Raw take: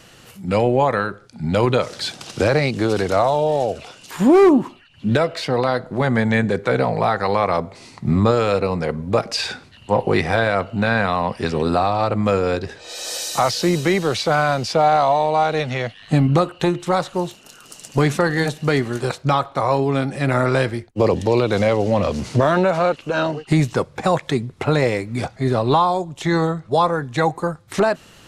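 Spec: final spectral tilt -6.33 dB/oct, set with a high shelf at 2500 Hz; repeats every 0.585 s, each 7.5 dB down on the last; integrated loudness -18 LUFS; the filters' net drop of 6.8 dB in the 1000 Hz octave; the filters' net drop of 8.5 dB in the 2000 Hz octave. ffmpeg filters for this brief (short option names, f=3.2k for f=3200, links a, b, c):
-af "equalizer=f=1k:t=o:g=-7.5,equalizer=f=2k:t=o:g=-5,highshelf=f=2.5k:g=-7.5,aecho=1:1:585|1170|1755|2340|2925:0.422|0.177|0.0744|0.0312|0.0131,volume=3dB"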